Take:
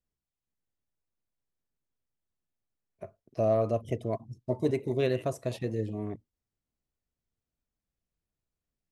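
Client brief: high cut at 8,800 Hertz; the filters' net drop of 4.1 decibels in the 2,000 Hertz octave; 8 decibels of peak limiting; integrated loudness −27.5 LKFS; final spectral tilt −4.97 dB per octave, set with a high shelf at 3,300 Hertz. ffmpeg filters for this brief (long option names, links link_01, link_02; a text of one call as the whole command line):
ffmpeg -i in.wav -af "lowpass=8800,equalizer=frequency=2000:width_type=o:gain=-7.5,highshelf=frequency=3300:gain=5.5,volume=7.5dB,alimiter=limit=-15.5dB:level=0:latency=1" out.wav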